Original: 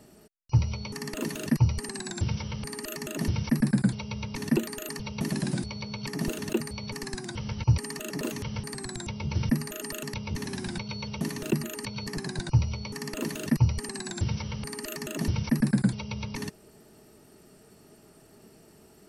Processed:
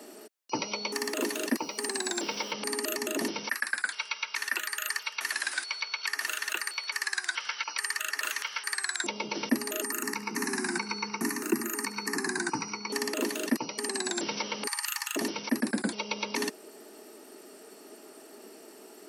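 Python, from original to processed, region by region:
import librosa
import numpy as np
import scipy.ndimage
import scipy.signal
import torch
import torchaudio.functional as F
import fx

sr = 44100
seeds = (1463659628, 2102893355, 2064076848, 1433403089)

y = fx.chain(x, sr, fx.highpass(hz=230.0, slope=12),
    fx.quant_dither(seeds[0], bits=10, dither='none'), at=(0.92, 2.53))
y = fx.chain(y, sr, fx.highpass_res(hz=1500.0, q=2.6),
    fx.echo_single(ms=164, db=-22.0), at=(3.49, 9.04))
y = fx.chain(y, sr, fx.fixed_phaser(hz=1400.0, stages=4),
    fx.echo_feedback(ms=71, feedback_pct=45, wet_db=-16.5), at=(9.84, 12.9))
y = fx.chain(y, sr, fx.brickwall_highpass(low_hz=790.0),
    fx.doubler(ms=45.0, db=-12.0), at=(14.67, 15.16))
y = scipy.signal.sosfilt(scipy.signal.butter(6, 260.0, 'highpass', fs=sr, output='sos'), y)
y = fx.rider(y, sr, range_db=10, speed_s=0.5)
y = F.gain(torch.from_numpy(y), 5.5).numpy()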